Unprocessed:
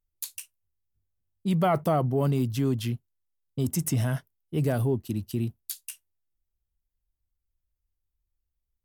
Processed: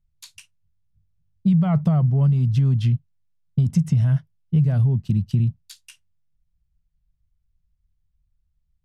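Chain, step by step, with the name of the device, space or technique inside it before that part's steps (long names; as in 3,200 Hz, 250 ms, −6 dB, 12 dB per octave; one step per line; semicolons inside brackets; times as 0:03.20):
jukebox (low-pass filter 5,300 Hz 12 dB per octave; low shelf with overshoot 230 Hz +10.5 dB, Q 3; downward compressor, threshold −17 dBFS, peak gain reduction 11 dB)
level +1.5 dB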